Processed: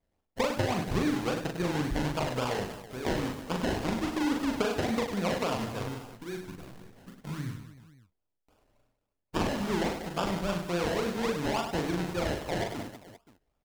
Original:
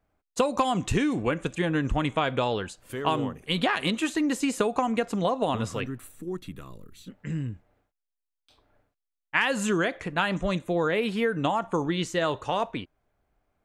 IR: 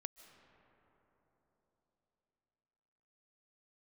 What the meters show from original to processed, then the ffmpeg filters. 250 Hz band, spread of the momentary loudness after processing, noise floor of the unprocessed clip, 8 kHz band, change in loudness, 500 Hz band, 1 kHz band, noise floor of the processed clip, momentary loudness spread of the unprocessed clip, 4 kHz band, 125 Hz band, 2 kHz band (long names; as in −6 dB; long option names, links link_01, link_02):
−3.0 dB, 12 LU, −85 dBFS, −3.5 dB, −4.0 dB, −4.0 dB, −5.5 dB, −82 dBFS, 12 LU, −4.5 dB, −2.5 dB, −6.5 dB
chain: -filter_complex "[0:a]acrusher=samples=30:mix=1:aa=0.000001:lfo=1:lforange=18:lforate=3.6,aecho=1:1:40|100|190|325|527.5:0.631|0.398|0.251|0.158|0.1,acrossover=split=7300[link_01][link_02];[link_02]acompressor=threshold=-42dB:ratio=4:attack=1:release=60[link_03];[link_01][link_03]amix=inputs=2:normalize=0,volume=-6dB"